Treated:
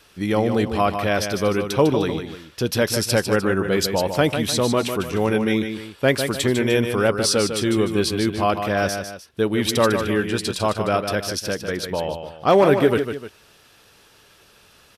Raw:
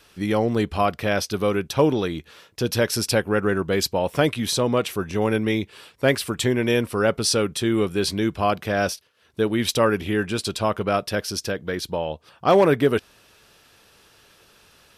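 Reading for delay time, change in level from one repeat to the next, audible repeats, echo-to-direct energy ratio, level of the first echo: 0.151 s, -7.5 dB, 2, -7.0 dB, -7.5 dB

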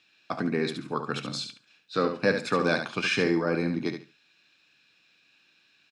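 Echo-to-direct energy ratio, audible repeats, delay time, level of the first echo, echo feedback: -7.5 dB, 2, 71 ms, -7.5 dB, 20%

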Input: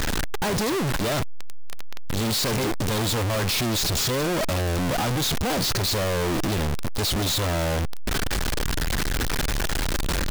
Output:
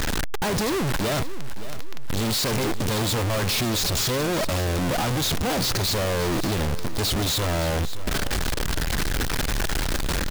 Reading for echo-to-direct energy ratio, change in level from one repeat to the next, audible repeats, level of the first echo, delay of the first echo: -13.5 dB, -8.5 dB, 3, -14.0 dB, 0.57 s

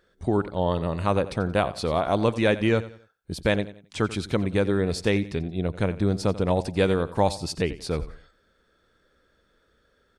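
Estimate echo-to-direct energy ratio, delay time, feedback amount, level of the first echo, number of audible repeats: -15.5 dB, 89 ms, 34%, -16.0 dB, 3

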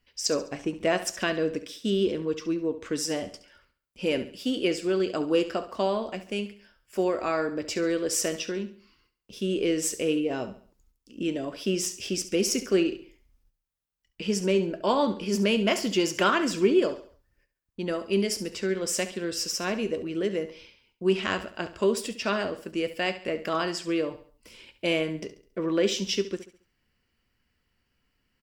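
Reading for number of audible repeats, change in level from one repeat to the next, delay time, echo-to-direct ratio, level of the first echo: 3, -8.0 dB, 69 ms, -13.0 dB, -13.5 dB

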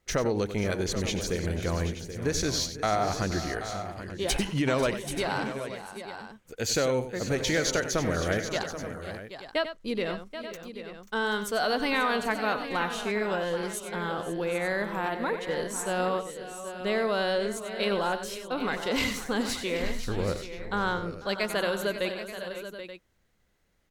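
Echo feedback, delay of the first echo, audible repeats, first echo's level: no steady repeat, 93 ms, 5, -11.0 dB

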